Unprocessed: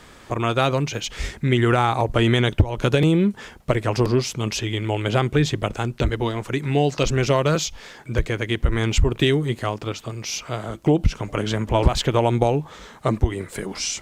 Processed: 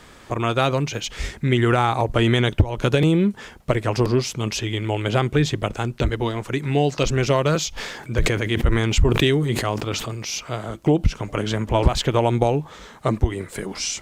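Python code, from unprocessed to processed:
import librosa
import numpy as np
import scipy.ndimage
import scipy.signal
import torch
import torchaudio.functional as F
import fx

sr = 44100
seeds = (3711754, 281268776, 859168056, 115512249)

y = fx.sustainer(x, sr, db_per_s=42.0, at=(7.76, 10.38), fade=0.02)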